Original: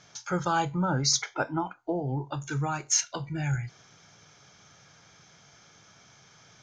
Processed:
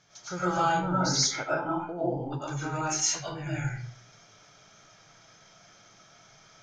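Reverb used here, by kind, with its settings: digital reverb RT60 0.56 s, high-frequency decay 0.65×, pre-delay 70 ms, DRR -8.5 dB; gain -8 dB

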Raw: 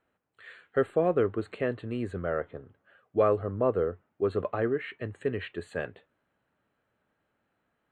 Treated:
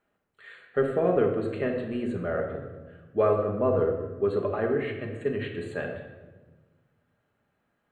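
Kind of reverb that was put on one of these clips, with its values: shoebox room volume 870 m³, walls mixed, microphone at 1.3 m; gain -1 dB

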